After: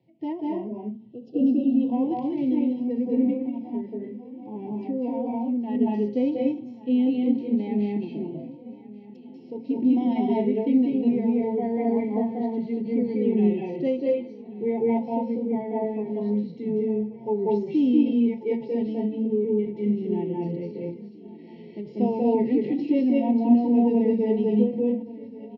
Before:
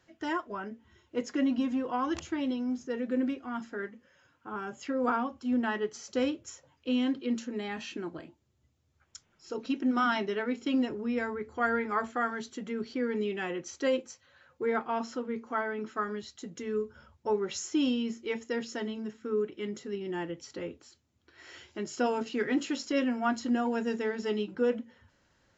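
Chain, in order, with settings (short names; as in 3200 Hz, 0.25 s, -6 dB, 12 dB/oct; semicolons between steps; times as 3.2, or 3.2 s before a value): Chebyshev band-stop 900–2100 Hz, order 3; tilt -4 dB/oct; feedback echo 1.133 s, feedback 58%, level -19 dB; 0.89–1.79 spectral delete 790–2600 Hz; Chebyshev band-pass 130–4700 Hz, order 4; reverb RT60 0.40 s, pre-delay 0.187 s, DRR -1 dB; harmonic-percussive split percussive -7 dB; 3.33–5.75 compressor 3:1, threshold -25 dBFS, peak gain reduction 6.5 dB; ending taper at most 140 dB/s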